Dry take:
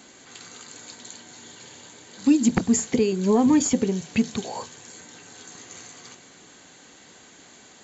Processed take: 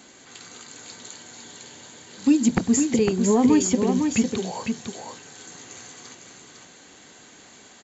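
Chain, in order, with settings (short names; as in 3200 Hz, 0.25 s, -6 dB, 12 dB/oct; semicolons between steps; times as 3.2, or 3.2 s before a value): echo 0.504 s -5.5 dB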